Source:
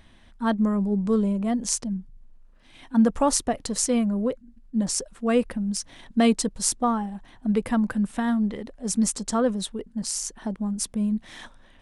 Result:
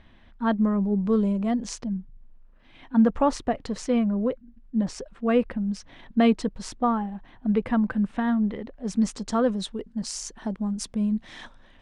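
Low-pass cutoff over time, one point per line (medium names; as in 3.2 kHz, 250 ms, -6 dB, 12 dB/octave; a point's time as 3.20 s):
1.06 s 3.2 kHz
1.29 s 6.8 kHz
1.89 s 3 kHz
8.72 s 3 kHz
9.59 s 5.9 kHz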